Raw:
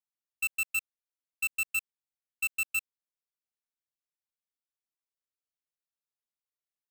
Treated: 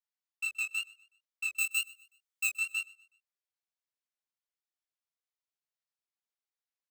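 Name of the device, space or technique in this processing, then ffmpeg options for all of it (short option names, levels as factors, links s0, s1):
double-tracked vocal: -filter_complex "[0:a]acrossover=split=430 7800:gain=0.1 1 0.251[s0][s1][s2];[s0][s1][s2]amix=inputs=3:normalize=0,bandreject=f=60:t=h:w=6,bandreject=f=120:t=h:w=6,bandreject=f=180:t=h:w=6,bandreject=f=240:t=h:w=6,bandreject=f=300:t=h:w=6,bandreject=f=360:t=h:w=6,bandreject=f=420:t=h:w=6,bandreject=f=480:t=h:w=6,bandreject=f=540:t=h:w=6,bandreject=f=600:t=h:w=6,asettb=1/sr,asplit=3[s3][s4][s5];[s3]atrim=end=1.564[s6];[s4]atrim=start=1.56:end=2.56,asetpts=PTS-STARTPTS,afade=t=in:d=0.004:c=qsin,afade=t=out:st=0.996:d=0.004:c=qsin,aemphasis=mode=production:type=50kf[s7];[s5]atrim=start=2.556[s8];[s6][s7]acrossfade=d=0.004:c1=hsin:c2=qsin[s9];[s9][s8]acrossfade=d=0.004:c1=qsin:c2=hsin,asplit=2[s10][s11];[s11]adelay=22,volume=0.596[s12];[s10][s12]amix=inputs=2:normalize=0,flanger=delay=16.5:depth=7.5:speed=2.1,aecho=1:1:124|248|372:0.075|0.0292|0.0114"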